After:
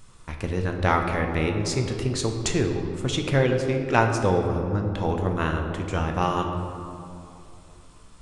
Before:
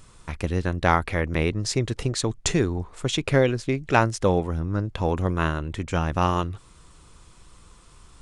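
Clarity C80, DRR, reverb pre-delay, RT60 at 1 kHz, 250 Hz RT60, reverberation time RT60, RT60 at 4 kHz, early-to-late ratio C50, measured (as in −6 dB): 6.0 dB, 2.5 dB, 9 ms, 2.5 s, 3.3 s, 2.7 s, 1.3 s, 5.0 dB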